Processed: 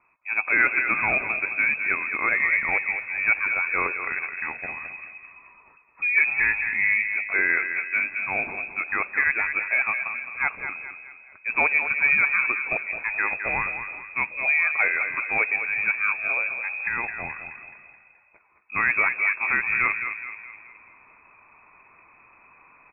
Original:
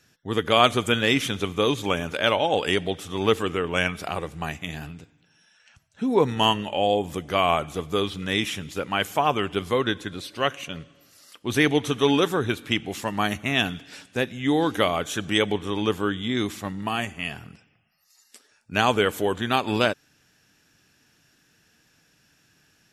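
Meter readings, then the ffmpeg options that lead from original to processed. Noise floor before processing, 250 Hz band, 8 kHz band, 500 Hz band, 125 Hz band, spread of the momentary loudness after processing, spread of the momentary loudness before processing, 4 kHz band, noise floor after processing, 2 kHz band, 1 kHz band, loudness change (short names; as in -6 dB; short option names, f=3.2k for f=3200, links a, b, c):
-63 dBFS, -17.5 dB, under -40 dB, -14.5 dB, under -15 dB, 12 LU, 11 LU, under -40 dB, -56 dBFS, +9.0 dB, -5.5 dB, +1.5 dB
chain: -filter_complex "[0:a]highpass=110,areverse,acompressor=mode=upward:threshold=-40dB:ratio=2.5,areverse,asoftclip=type=tanh:threshold=-8.5dB,asplit=2[a][b];[b]adelay=213,lowpass=f=1.6k:p=1,volume=-6.5dB,asplit=2[c][d];[d]adelay=213,lowpass=f=1.6k:p=1,volume=0.51,asplit=2[e][f];[f]adelay=213,lowpass=f=1.6k:p=1,volume=0.51,asplit=2[g][h];[h]adelay=213,lowpass=f=1.6k:p=1,volume=0.51,asplit=2[i][j];[j]adelay=213,lowpass=f=1.6k:p=1,volume=0.51,asplit=2[k][l];[l]adelay=213,lowpass=f=1.6k:p=1,volume=0.51[m];[a][c][e][g][i][k][m]amix=inputs=7:normalize=0,lowpass=f=2.3k:t=q:w=0.5098,lowpass=f=2.3k:t=q:w=0.6013,lowpass=f=2.3k:t=q:w=0.9,lowpass=f=2.3k:t=q:w=2.563,afreqshift=-2700"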